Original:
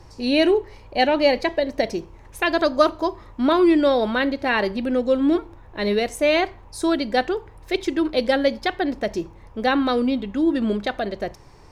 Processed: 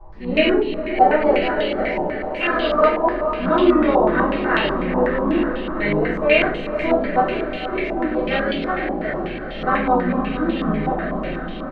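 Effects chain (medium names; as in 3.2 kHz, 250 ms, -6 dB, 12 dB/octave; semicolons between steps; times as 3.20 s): spectrogram pixelated in time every 50 ms; harmony voices -5 st -6 dB; echo that smears into a reverb 452 ms, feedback 73%, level -9 dB; simulated room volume 61 m³, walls mixed, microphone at 2.7 m; step-sequenced low-pass 8.1 Hz 890–3100 Hz; trim -13 dB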